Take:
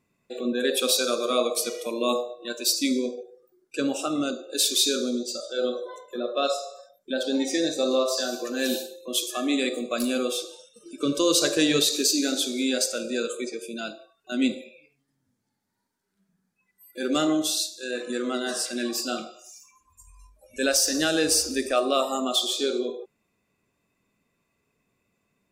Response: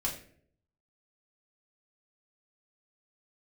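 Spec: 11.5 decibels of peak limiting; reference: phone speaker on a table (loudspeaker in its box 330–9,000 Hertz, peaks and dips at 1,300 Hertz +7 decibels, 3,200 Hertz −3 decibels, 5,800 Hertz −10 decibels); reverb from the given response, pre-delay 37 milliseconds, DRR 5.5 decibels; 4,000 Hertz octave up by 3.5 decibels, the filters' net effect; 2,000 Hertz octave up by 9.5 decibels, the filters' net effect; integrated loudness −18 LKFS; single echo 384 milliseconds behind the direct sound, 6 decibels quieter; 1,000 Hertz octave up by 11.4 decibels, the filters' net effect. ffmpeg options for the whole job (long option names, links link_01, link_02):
-filter_complex "[0:a]equalizer=frequency=1000:width_type=o:gain=7,equalizer=frequency=2000:width_type=o:gain=7.5,equalizer=frequency=4000:width_type=o:gain=4.5,alimiter=limit=-14.5dB:level=0:latency=1,aecho=1:1:384:0.501,asplit=2[link_01][link_02];[1:a]atrim=start_sample=2205,adelay=37[link_03];[link_02][link_03]afir=irnorm=-1:irlink=0,volume=-9dB[link_04];[link_01][link_04]amix=inputs=2:normalize=0,highpass=frequency=330:width=0.5412,highpass=frequency=330:width=1.3066,equalizer=frequency=1300:width_type=q:width=4:gain=7,equalizer=frequency=3200:width_type=q:width=4:gain=-3,equalizer=frequency=5800:width_type=q:width=4:gain=-10,lowpass=frequency=9000:width=0.5412,lowpass=frequency=9000:width=1.3066,volume=6.5dB"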